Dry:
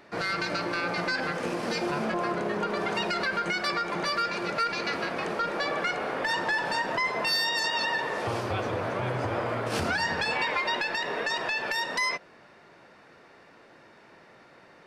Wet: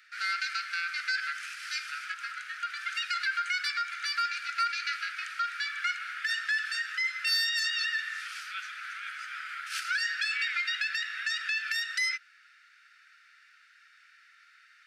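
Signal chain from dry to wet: Chebyshev high-pass 1.3 kHz, order 8

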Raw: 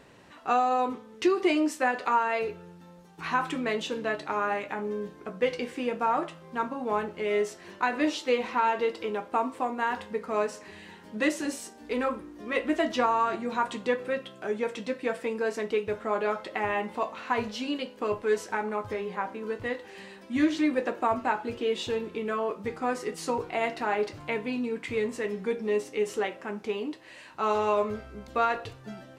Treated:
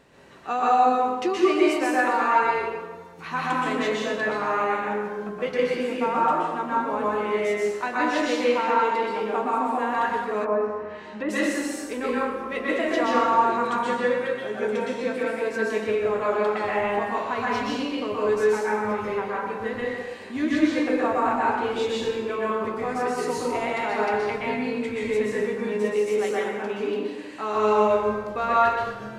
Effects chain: plate-style reverb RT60 1.4 s, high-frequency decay 0.65×, pre-delay 110 ms, DRR -6.5 dB; 10.44–11.29 s: low-pass that closes with the level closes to 1.3 kHz, closed at -24 dBFS; trim -2.5 dB

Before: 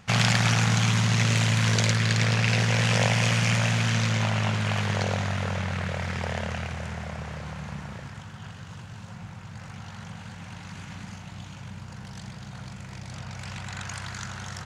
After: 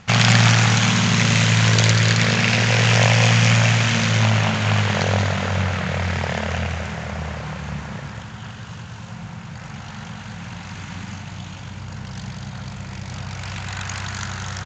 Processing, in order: elliptic low-pass 7.2 kHz, stop band 50 dB; on a send: delay 190 ms -6.5 dB; on the sum: trim +7 dB

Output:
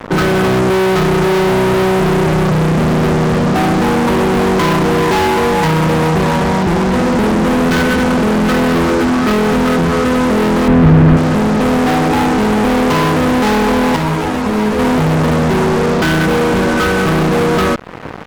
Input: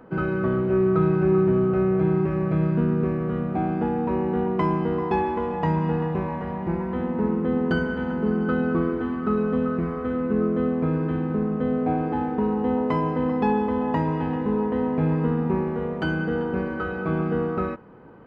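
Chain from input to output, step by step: fuzz box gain 36 dB, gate -45 dBFS; compression 2:1, threshold -24 dBFS, peak gain reduction 5.5 dB; 10.68–11.17 s: tone controls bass +9 dB, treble -13 dB; 13.96–14.79 s: three-phase chorus; trim +7.5 dB

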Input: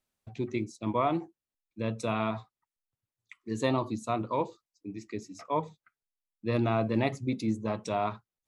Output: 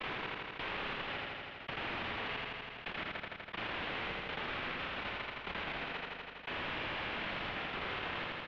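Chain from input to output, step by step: slices played last to first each 84 ms, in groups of 7; high-pass 210 Hz 6 dB/octave; bass shelf 330 Hz -4 dB; comb 4.3 ms, depth 98%; dynamic bell 640 Hz, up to -7 dB, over -41 dBFS, Q 1.7; waveshaping leveller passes 2; in parallel at -10.5 dB: saturation -33 dBFS, distortion -7 dB; on the sum: noise-vocoded speech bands 1; integer overflow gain 24.5 dB; on a send: feedback delay 82 ms, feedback 51%, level -4.5 dB; on the sum: mistuned SSB -280 Hz 300–3300 Hz; level flattener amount 70%; trim -4 dB

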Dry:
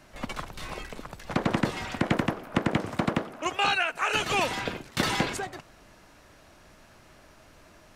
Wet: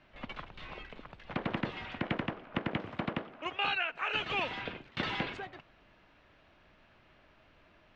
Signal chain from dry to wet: four-pole ladder low-pass 3.8 kHz, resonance 35%; trim -1.5 dB

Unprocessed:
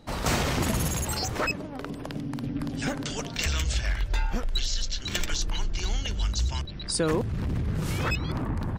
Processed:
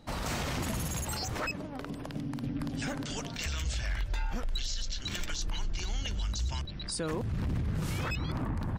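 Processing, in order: peaking EQ 410 Hz -3 dB 0.59 oct; peak limiter -22.5 dBFS, peak gain reduction 7.5 dB; trim -2.5 dB

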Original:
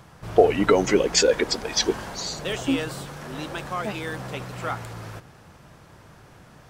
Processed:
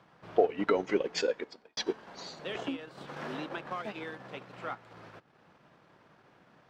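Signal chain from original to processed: three-band isolator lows -19 dB, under 160 Hz, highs -19 dB, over 4.6 kHz; de-hum 436.1 Hz, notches 30; 1.16–1.77 s: fade out; transient shaper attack +1 dB, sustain -8 dB; 2.55–4.04 s: three bands compressed up and down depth 100%; trim -9 dB

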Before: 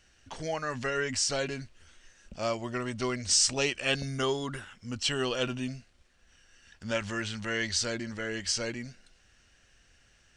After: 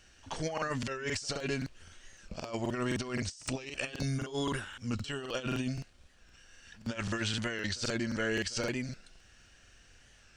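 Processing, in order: band-stop 2 kHz, Q 24; compressor with a negative ratio -34 dBFS, ratio -0.5; on a send: reverse echo 76 ms -21.5 dB; on the sum: crackling interface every 0.26 s, samples 2048, repeat, from 0.53 s; warped record 45 rpm, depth 100 cents

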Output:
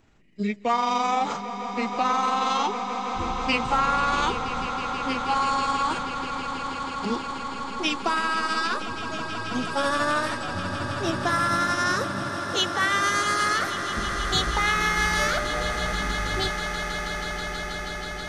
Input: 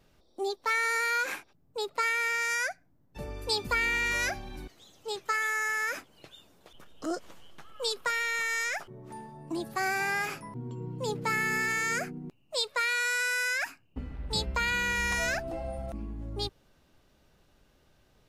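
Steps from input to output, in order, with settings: pitch bend over the whole clip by -11.5 st ending unshifted; echo with a slow build-up 161 ms, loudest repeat 8, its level -14 dB; trim +6 dB

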